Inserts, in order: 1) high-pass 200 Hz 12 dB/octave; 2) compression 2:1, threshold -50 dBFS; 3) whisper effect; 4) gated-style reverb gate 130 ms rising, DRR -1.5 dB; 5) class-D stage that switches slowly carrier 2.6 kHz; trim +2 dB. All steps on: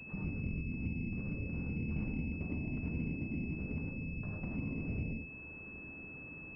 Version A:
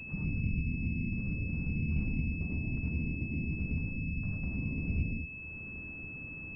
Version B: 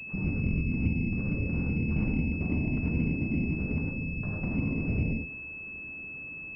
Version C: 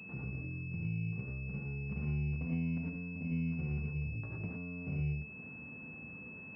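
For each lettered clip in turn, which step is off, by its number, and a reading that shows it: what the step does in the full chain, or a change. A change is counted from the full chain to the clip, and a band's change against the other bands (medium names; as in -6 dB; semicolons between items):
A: 1, 500 Hz band -8.0 dB; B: 2, mean gain reduction 7.0 dB; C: 3, 125 Hz band +3.5 dB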